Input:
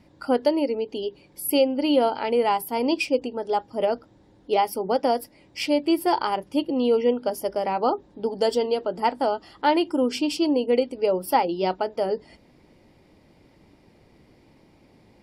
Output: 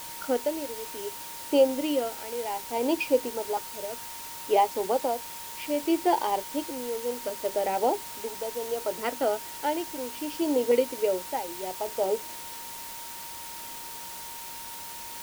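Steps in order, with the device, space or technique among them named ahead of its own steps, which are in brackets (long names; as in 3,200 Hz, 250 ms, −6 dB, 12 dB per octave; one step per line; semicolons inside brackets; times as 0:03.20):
shortwave radio (band-pass filter 330–2,600 Hz; amplitude tremolo 0.65 Hz, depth 76%; auto-filter notch saw up 0.56 Hz 780–2,300 Hz; steady tone 930 Hz −45 dBFS; white noise bed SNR 11 dB)
level +1 dB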